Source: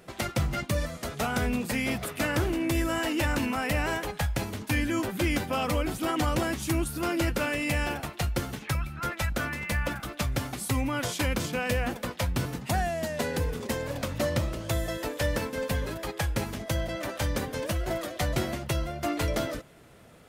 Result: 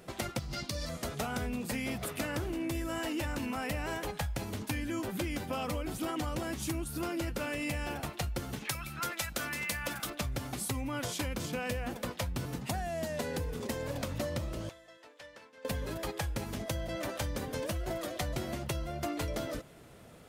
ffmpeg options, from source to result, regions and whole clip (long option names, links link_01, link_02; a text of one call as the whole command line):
ffmpeg -i in.wav -filter_complex "[0:a]asettb=1/sr,asplit=3[link_01][link_02][link_03];[link_01]atrim=end=0.394[link_04];[link_02]atrim=start=0.39:end=0.89,asetpts=PTS-STARTPTS,afade=type=in:duration=0.004:curve=qsin,afade=type=out:start_time=0.496:duration=0.004:curve=qsin,equalizer=frequency=4800:width_type=o:width=0.84:gain=14,acompressor=threshold=-31dB:ratio=5:attack=3.2:release=140:knee=1:detection=peak[link_05];[link_03]atrim=start=0.886[link_06];[link_04][link_05]acrossfade=duration=0.004:curve1=hsin:curve2=qsin[link_07];[link_07][link_06]acrossfade=duration=0.004:curve1=qsin:curve2=hsin,asettb=1/sr,asplit=3[link_08][link_09][link_10];[link_08]atrim=end=8.654[link_11];[link_09]atrim=start=8.65:end=10.1,asetpts=PTS-STARTPTS,afade=type=in:duration=0.004:curve=qsin,afade=type=out:start_time=1.446:duration=0.004:curve=qsin,highpass=frequency=180:poles=1,highshelf=frequency=2500:gain=9.5[link_12];[link_10]atrim=start=10.096[link_13];[link_11][link_12]acrossfade=duration=0.004:curve1=hsin:curve2=qsin[link_14];[link_14][link_13]acrossfade=duration=0.004:curve1=qsin:curve2=hsin,asettb=1/sr,asplit=3[link_15][link_16][link_17];[link_15]atrim=end=14.694[link_18];[link_16]atrim=start=14.69:end=15.65,asetpts=PTS-STARTPTS,afade=type=in:duration=0.004:curve=qsin,afade=type=out:start_time=0.956:duration=0.004:curve=qsin,aderivative,adynamicsmooth=sensitivity=1.5:basefreq=1900[link_19];[link_17]atrim=start=15.646[link_20];[link_18][link_19]acrossfade=duration=0.004:curve1=hsin:curve2=qsin[link_21];[link_21][link_20]acrossfade=duration=0.004:curve1=qsin:curve2=hsin,equalizer=frequency=1800:width_type=o:width=1.5:gain=-2.5,acompressor=threshold=-32dB:ratio=6" out.wav